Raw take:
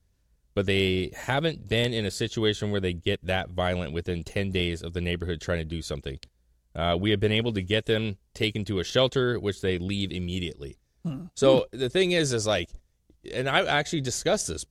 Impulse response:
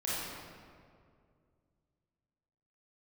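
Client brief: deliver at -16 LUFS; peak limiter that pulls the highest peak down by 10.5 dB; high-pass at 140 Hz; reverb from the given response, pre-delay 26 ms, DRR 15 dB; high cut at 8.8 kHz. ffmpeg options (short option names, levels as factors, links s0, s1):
-filter_complex "[0:a]highpass=140,lowpass=8800,alimiter=limit=0.141:level=0:latency=1,asplit=2[s0][s1];[1:a]atrim=start_sample=2205,adelay=26[s2];[s1][s2]afir=irnorm=-1:irlink=0,volume=0.0891[s3];[s0][s3]amix=inputs=2:normalize=0,volume=5.31"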